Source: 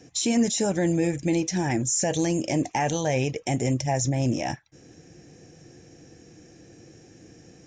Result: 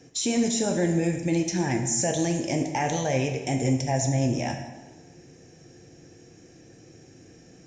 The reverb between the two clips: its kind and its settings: plate-style reverb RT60 1.2 s, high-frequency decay 0.85×, DRR 3.5 dB; gain -2 dB

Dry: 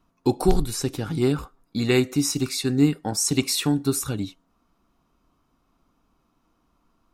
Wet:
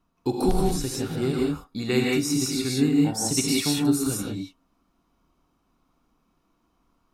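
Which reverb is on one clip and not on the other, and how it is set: non-linear reverb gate 0.21 s rising, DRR -2 dB; gain -5 dB

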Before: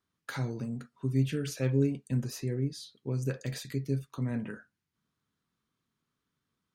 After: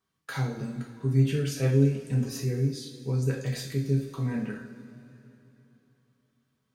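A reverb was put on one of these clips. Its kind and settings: two-slope reverb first 0.44 s, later 3.4 s, from -17 dB, DRR -1.5 dB

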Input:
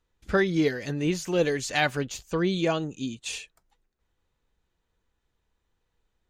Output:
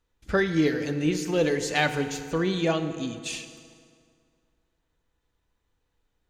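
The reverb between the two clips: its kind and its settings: FDN reverb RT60 2.2 s, low-frequency decay 0.95×, high-frequency decay 0.7×, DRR 8 dB

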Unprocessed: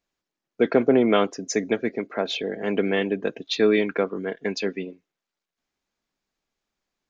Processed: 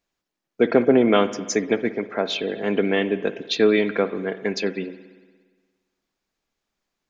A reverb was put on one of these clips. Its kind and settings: spring tank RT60 1.5 s, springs 58 ms, chirp 35 ms, DRR 13 dB; gain +2 dB

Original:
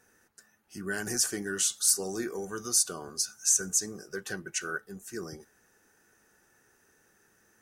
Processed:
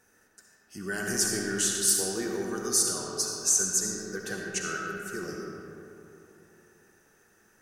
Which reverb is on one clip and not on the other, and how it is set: digital reverb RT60 3.1 s, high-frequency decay 0.5×, pre-delay 25 ms, DRR -0.5 dB

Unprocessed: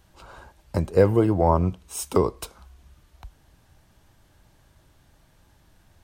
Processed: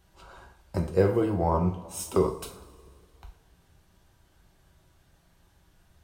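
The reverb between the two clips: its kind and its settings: two-slope reverb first 0.38 s, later 2.1 s, from -19 dB, DRR 1.5 dB; gain -6 dB

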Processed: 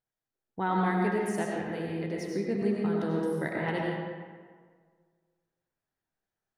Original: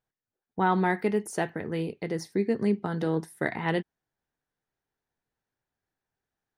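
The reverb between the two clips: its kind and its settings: digital reverb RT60 1.7 s, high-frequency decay 0.6×, pre-delay 55 ms, DRR -2 dB; gain -6 dB

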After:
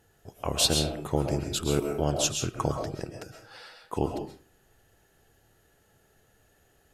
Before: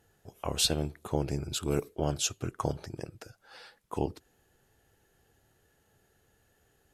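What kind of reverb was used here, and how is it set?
digital reverb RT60 0.4 s, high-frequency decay 0.7×, pre-delay 90 ms, DRR 3.5 dB; gain +3 dB

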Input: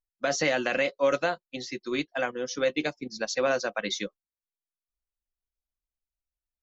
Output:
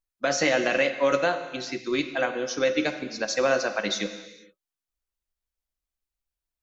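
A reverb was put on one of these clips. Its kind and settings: non-linear reverb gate 0.49 s falling, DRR 8 dB; gain +2.5 dB

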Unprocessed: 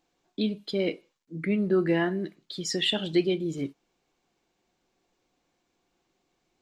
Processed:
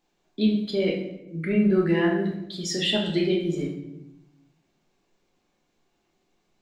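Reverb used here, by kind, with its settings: shoebox room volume 260 m³, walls mixed, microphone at 1.3 m; gain -1.5 dB

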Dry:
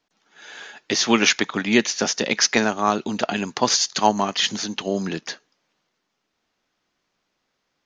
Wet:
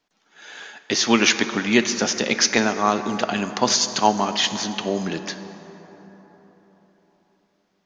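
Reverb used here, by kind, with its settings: plate-style reverb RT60 4.3 s, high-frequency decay 0.45×, DRR 9.5 dB

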